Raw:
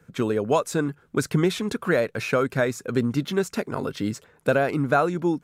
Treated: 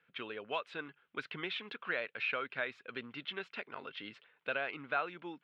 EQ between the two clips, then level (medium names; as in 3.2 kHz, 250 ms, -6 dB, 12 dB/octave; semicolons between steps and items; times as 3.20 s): band-pass filter 3 kHz, Q 2.6; distance through air 420 m; +5.5 dB